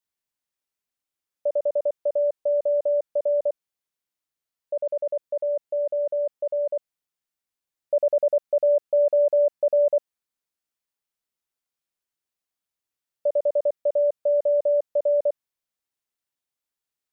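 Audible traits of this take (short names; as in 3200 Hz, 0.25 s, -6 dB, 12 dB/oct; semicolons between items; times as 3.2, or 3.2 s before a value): noise floor -88 dBFS; spectral tilt +8.5 dB/oct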